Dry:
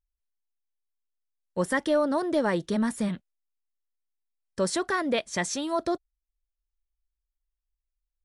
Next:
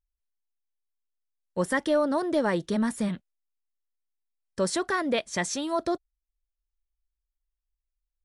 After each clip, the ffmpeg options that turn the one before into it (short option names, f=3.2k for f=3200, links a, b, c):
-af anull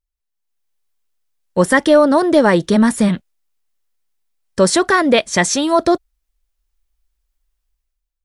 -af "dynaudnorm=f=150:g=7:m=12.5dB,volume=2dB"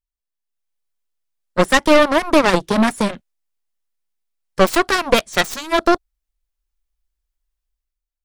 -af "aeval=exprs='0.891*(cos(1*acos(clip(val(0)/0.891,-1,1)))-cos(1*PI/2))+0.316*(cos(2*acos(clip(val(0)/0.891,-1,1)))-cos(2*PI/2))+0.2*(cos(7*acos(clip(val(0)/0.891,-1,1)))-cos(7*PI/2))':c=same,volume=-2dB"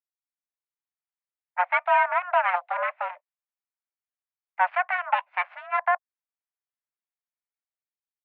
-af "highpass=f=280:t=q:w=0.5412,highpass=f=280:t=q:w=1.307,lowpass=f=2.1k:t=q:w=0.5176,lowpass=f=2.1k:t=q:w=0.7071,lowpass=f=2.1k:t=q:w=1.932,afreqshift=360,volume=-8dB"